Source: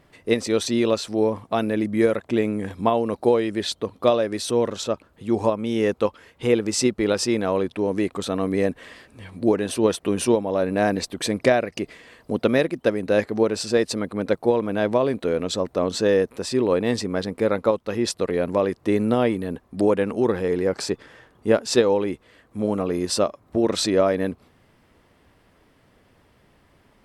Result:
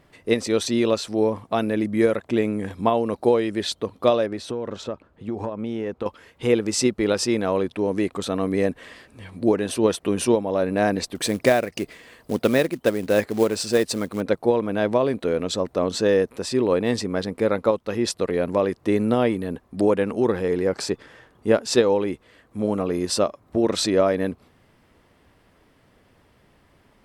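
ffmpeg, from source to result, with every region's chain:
-filter_complex "[0:a]asettb=1/sr,asplit=3[a][b][c];[a]atrim=end=4.264[d];[b]atrim=start=4.26:end=6.06,asetpts=PTS-STARTPTS,afade=t=in:d=0.004:c=qsin,afade=t=out:st=1.796:d=0.004:c=qsin,lowpass=f=1.9k:p=1,acompressor=threshold=-23dB:ratio=10:attack=3.2:release=140:knee=1:detection=peak[e];[c]atrim=start=6.056[f];[d][e]acrossfade=d=0.004:c1=hsin:c2=qsin[g];[g][f]acrossfade=d=0.004:c1=qsin:c2=hsin,asettb=1/sr,asplit=3[h][i][j];[h]atrim=end=11.154[k];[i]atrim=start=11.15:end=14.21,asetpts=PTS-STARTPTS,afade=t=in:d=0.004:c=qsin,afade=t=out:st=3.056:d=0.004:c=qsin,highshelf=f=11k:g=8.5,acrusher=bits=5:mode=log:mix=0:aa=0.000001[l];[j]atrim=start=14.206[m];[k][l]acrossfade=d=0.004:c1=hsin:c2=qsin[n];[n][m]acrossfade=d=0.004:c1=qsin:c2=hsin"

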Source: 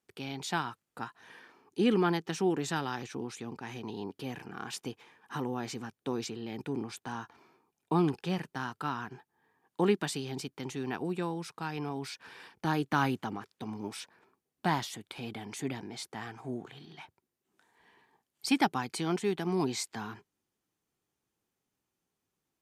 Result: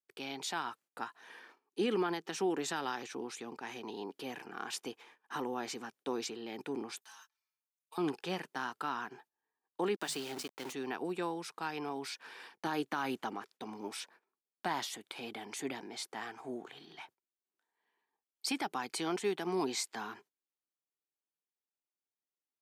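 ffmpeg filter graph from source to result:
-filter_complex "[0:a]asettb=1/sr,asplit=3[a][b][c];[a]atrim=end=7.014[d];[b]atrim=start=7.01:end=7.98,asetpts=PTS-STARTPTS,afade=t=in:d=0.004:c=qsin,afade=t=out:st=0.966:d=0.004:c=qsin,highpass=f=1.3k:p=1,aderivative,aecho=1:1:4.6:0.98,atrim=end_sample=42777[e];[c]atrim=start=7.976[f];[d][e]acrossfade=d=0.004:c1=hsin:c2=qsin[g];[g][f]acrossfade=d=0.004:c1=qsin:c2=hsin,asettb=1/sr,asplit=3[h][i][j];[h]atrim=end=9.964[k];[i]atrim=start=9.96:end=10.73,asetpts=PTS-STARTPTS,afade=t=in:d=0.004:c=qsin,afade=t=out:st=0.766:d=0.004:c=qsin,bandreject=f=50:t=h:w=6,bandreject=f=100:t=h:w=6,bandreject=f=150:t=h:w=6,bandreject=f=200:t=h:w=6,bandreject=f=250:t=h:w=6,aeval=exprs='val(0)*gte(abs(val(0)),0.0075)':c=same[l];[j]atrim=start=10.726[m];[k][l]acrossfade=d=0.004:c1=hsin:c2=qsin[n];[n][m]acrossfade=d=0.004:c1=qsin:c2=hsin,agate=range=-18dB:threshold=-58dB:ratio=16:detection=peak,highpass=320,alimiter=limit=-24dB:level=0:latency=1:release=81"

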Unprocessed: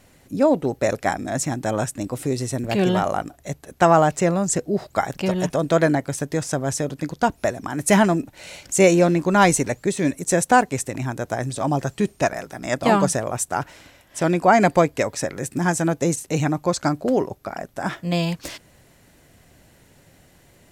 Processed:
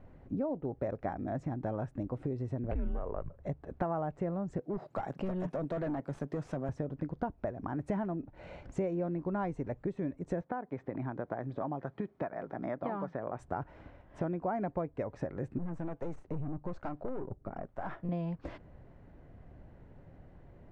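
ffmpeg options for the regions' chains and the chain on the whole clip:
-filter_complex "[0:a]asettb=1/sr,asplit=3[a][b][c];[a]atrim=end=2.714[d];[b]atrim=start=2.71:end=3.4,asetpts=PTS-STARTPTS,afade=t=in:d=0.004:c=qsin,afade=t=out:st=0.686:d=0.004:c=qsin,afreqshift=-150,equalizer=f=5.2k:w=1.9:g=-12.5[e];[c]atrim=start=3.396[f];[d][e]acrossfade=d=0.004:c1=hsin:c2=qsin[g];[g][f]acrossfade=d=0.004:c1=qsin:c2=hsin,asettb=1/sr,asplit=3[h][i][j];[h]atrim=end=4.614[k];[i]atrim=start=4.61:end=6.69,asetpts=PTS-STARTPTS,afade=t=in:d=0.004:c=qsin,afade=t=out:st=2.076:d=0.004:c=qsin,highpass=f=140:w=0.5412,highpass=f=140:w=1.3066,aemphasis=mode=production:type=75fm,volume=21dB,asoftclip=hard,volume=-21dB[l];[j]atrim=start=6.686[m];[k][l]acrossfade=d=0.004:c1=hsin:c2=qsin[n];[n][m]acrossfade=d=0.004:c1=qsin:c2=hsin,asettb=1/sr,asplit=3[o][p][q];[o]atrim=end=10.414[r];[p]atrim=start=10.41:end=13.39,asetpts=PTS-STARTPTS,afade=t=in:d=0.004:c=qsin,afade=t=out:st=2.976:d=0.004:c=qsin,acrossover=split=1000|3800[s][t][u];[s]acompressor=threshold=-26dB:ratio=4[v];[t]acompressor=threshold=-28dB:ratio=4[w];[u]acompressor=threshold=-45dB:ratio=4[x];[v][w][x]amix=inputs=3:normalize=0,highpass=170,lowpass=5.1k,bandreject=f=2.7k:w=8.3[y];[q]atrim=start=13.386[z];[r][y]acrossfade=d=0.004:c1=hsin:c2=qsin[aa];[aa][z]acrossfade=d=0.004:c1=qsin:c2=hsin,asettb=1/sr,asplit=3[ab][ac][ad];[ab]atrim=end=15.584[ae];[ac]atrim=start=15.58:end=18.09,asetpts=PTS-STARTPTS,afade=t=in:d=0.004:c=qsin,afade=t=out:st=2.506:d=0.004:c=qsin,acrossover=split=490[af][ag];[af]aeval=exprs='val(0)*(1-0.7/2+0.7/2*cos(2*PI*1.1*n/s))':c=same[ah];[ag]aeval=exprs='val(0)*(1-0.7/2-0.7/2*cos(2*PI*1.1*n/s))':c=same[ai];[ah][ai]amix=inputs=2:normalize=0,aeval=exprs='(tanh(20*val(0)+0.35)-tanh(0.35))/20':c=same[aj];[ad]atrim=start=18.086[ak];[ae][aj]acrossfade=d=0.004:c1=hsin:c2=qsin[al];[al][ak]acrossfade=d=0.004:c1=qsin:c2=hsin,lowpass=1.1k,lowshelf=f=70:g=11.5,acompressor=threshold=-30dB:ratio=5,volume=-3dB"

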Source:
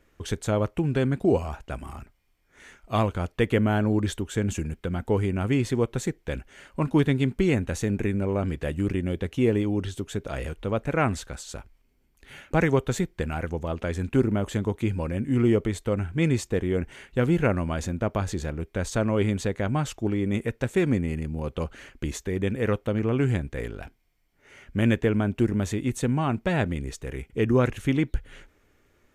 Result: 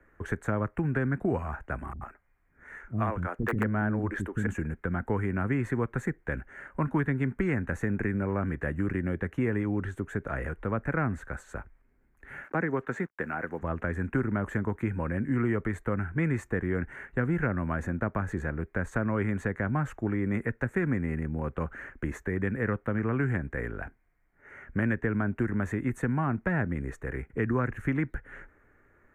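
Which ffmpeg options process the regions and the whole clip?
-filter_complex "[0:a]asettb=1/sr,asplit=3[a][b][c];[a]atrim=end=1.934[d];[b]atrim=start=1.93:end=4.47,asetpts=PTS-STARTPTS,afade=t=in:d=0.004:c=qsin,afade=t=out:st=2.536:d=0.004:c=qsin,aeval=exprs='(mod(3.76*val(0)+1,2)-1)/3.76':c=same,acrossover=split=310[e][f];[f]adelay=80[g];[e][g]amix=inputs=2:normalize=0,atrim=end_sample=112014[h];[c]atrim=start=4.466[i];[d][h]acrossfade=d=0.004:c1=hsin:c2=qsin[j];[j][i]acrossfade=d=0.004:c1=qsin:c2=hsin,asettb=1/sr,asplit=3[k][l][m];[k]atrim=end=12.444[n];[l]atrim=start=12.44:end=13.62,asetpts=PTS-STARTPTS,afade=t=in:d=0.004:c=qsin,afade=t=out:st=1.176:d=0.004:c=qsin,highpass=250,lowpass=6k,acrusher=bits=8:mix=0:aa=0.5[o];[m]atrim=start=13.616[p];[n][o]acrossfade=d=0.004:c1=hsin:c2=qsin[q];[q][p]acrossfade=d=0.004:c1=qsin:c2=hsin,highshelf=f=2.4k:t=q:w=3:g=-12,acrossover=split=140|320|830[r][s][t][u];[r]acompressor=threshold=-35dB:ratio=4[v];[s]acompressor=threshold=-29dB:ratio=4[w];[t]acompressor=threshold=-39dB:ratio=4[x];[u]acompressor=threshold=-32dB:ratio=4[y];[v][w][x][y]amix=inputs=4:normalize=0,equalizer=f=5k:t=o:w=0.35:g=-10.5"

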